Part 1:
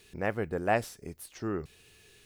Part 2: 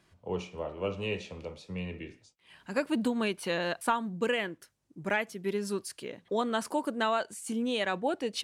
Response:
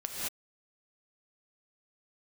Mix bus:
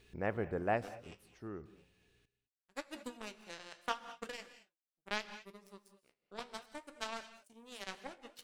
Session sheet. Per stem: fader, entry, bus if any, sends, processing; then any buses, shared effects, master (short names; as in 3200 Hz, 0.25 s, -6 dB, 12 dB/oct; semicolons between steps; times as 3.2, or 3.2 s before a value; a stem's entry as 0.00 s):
0.66 s -5.5 dB -> 1.01 s -13 dB, 0.00 s, send -18 dB, bell 15000 Hz -12.5 dB 1.8 oct; hum 60 Hz, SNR 30 dB
-0.5 dB, 0.00 s, send -13 dB, high shelf 4200 Hz +4.5 dB; power-law curve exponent 3; flange 0.7 Hz, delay 9.9 ms, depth 5.8 ms, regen -60%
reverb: on, pre-delay 3 ms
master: dry